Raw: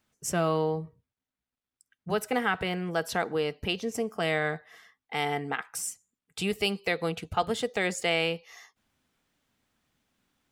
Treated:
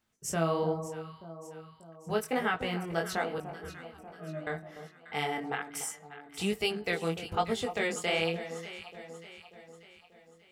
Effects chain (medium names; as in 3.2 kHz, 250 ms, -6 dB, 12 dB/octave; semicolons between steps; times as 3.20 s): 3.38–4.47 s: pitch-class resonator D#, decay 0.3 s; chorus 1.2 Hz, delay 17.5 ms, depth 7 ms; echo whose repeats swap between lows and highs 294 ms, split 1.1 kHz, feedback 70%, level -10 dB